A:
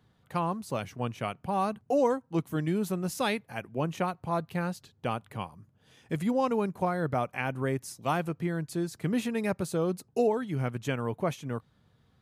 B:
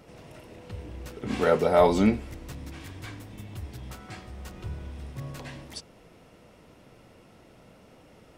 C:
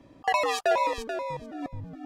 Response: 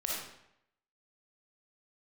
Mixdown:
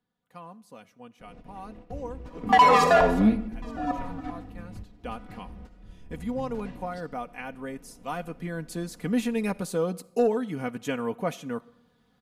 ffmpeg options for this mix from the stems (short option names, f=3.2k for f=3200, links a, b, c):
-filter_complex "[0:a]afade=t=in:st=4.72:d=0.32:silence=0.375837,afade=t=in:st=8.07:d=0.65:silence=0.421697,asplit=3[a][b][c];[b]volume=-23.5dB[d];[1:a]aemphasis=mode=reproduction:type=riaa,adelay=1200,volume=-9dB,asplit=2[e][f];[f]volume=-13dB[g];[2:a]equalizer=f=1.1k:w=1.5:g=11,adelay=2250,volume=-2dB,asplit=3[h][i][j];[h]atrim=end=3.01,asetpts=PTS-STARTPTS,afade=t=out:st=3.006:d=0.004:c=hsin[k];[i]atrim=start=3.01:end=3.62,asetpts=PTS-STARTPTS,volume=0[l];[j]atrim=start=3.62,asetpts=PTS-STARTPTS,afade=t=in:d=0.004:c=hsin[m];[k][l][m]concat=n=3:v=0:a=1,asplit=2[n][o];[o]volume=-7dB[p];[c]apad=whole_len=422270[q];[e][q]sidechaingate=range=-33dB:threshold=-59dB:ratio=16:detection=peak[r];[3:a]atrim=start_sample=2205[s];[d][g][p]amix=inputs=3:normalize=0[t];[t][s]afir=irnorm=-1:irlink=0[u];[a][r][n][u]amix=inputs=4:normalize=0,equalizer=f=71:t=o:w=0.69:g=-14.5,aecho=1:1:4.1:0.61,asoftclip=type=tanh:threshold=-10dB"